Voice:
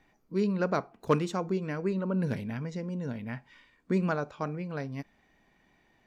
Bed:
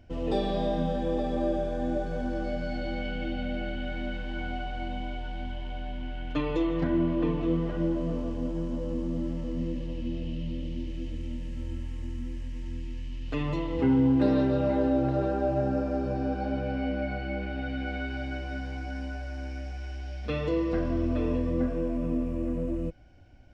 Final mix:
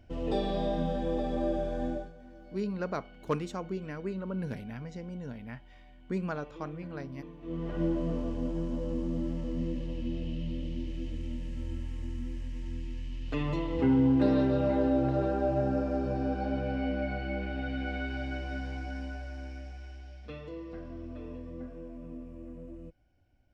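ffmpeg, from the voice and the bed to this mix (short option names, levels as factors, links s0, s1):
-filter_complex "[0:a]adelay=2200,volume=0.531[s0];[1:a]volume=6.31,afade=t=out:st=1.85:d=0.28:silence=0.133352,afade=t=in:st=7.41:d=0.42:silence=0.11885,afade=t=out:st=18.69:d=1.78:silence=0.223872[s1];[s0][s1]amix=inputs=2:normalize=0"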